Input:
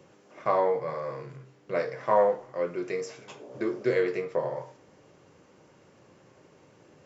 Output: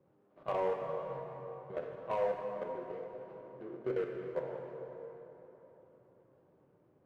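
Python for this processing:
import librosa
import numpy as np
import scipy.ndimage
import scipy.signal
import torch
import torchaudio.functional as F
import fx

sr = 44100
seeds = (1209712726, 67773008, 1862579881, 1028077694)

p1 = scipy.signal.medfilt(x, 25)
p2 = scipy.signal.sosfilt(scipy.signal.butter(2, 2000.0, 'lowpass', fs=sr, output='sos'), p1)
p3 = fx.level_steps(p2, sr, step_db=13)
p4 = 10.0 ** (-24.5 / 20.0) * (np.abs((p3 / 10.0 ** (-24.5 / 20.0) + 3.0) % 4.0 - 2.0) - 1.0)
p5 = p3 + (p4 * 10.0 ** (-10.0 / 20.0))
p6 = fx.rev_plate(p5, sr, seeds[0], rt60_s=3.9, hf_ratio=0.65, predelay_ms=0, drr_db=2.0)
y = p6 * 10.0 ** (-8.5 / 20.0)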